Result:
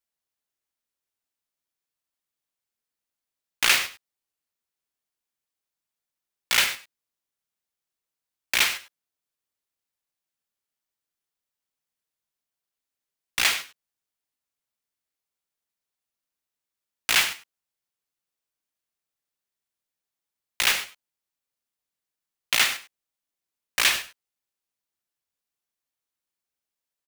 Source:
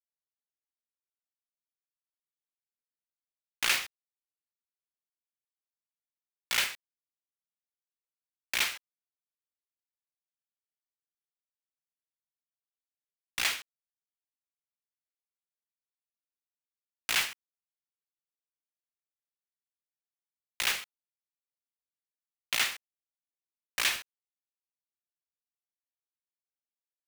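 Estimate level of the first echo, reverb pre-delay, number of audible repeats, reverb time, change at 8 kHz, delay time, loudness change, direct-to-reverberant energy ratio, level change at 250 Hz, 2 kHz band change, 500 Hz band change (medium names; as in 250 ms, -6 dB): -17.0 dB, no reverb, 1, no reverb, +7.5 dB, 95 ms, +7.5 dB, no reverb, +7.5 dB, +7.5 dB, +7.5 dB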